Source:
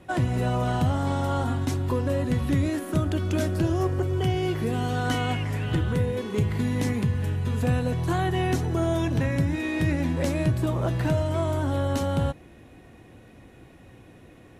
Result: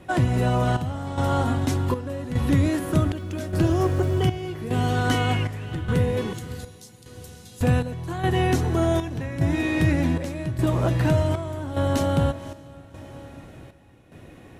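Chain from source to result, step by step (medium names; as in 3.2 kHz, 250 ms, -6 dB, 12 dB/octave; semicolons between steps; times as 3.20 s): 3.12–4.46 s: crackle 480 per s -46 dBFS; 6.33–7.61 s: inverse Chebyshev high-pass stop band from 1.6 kHz, stop band 50 dB; on a send: echo that smears into a reverb 562 ms, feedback 45%, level -14 dB; on the sum: square tremolo 0.85 Hz, depth 65%, duty 65%; trim +3.5 dB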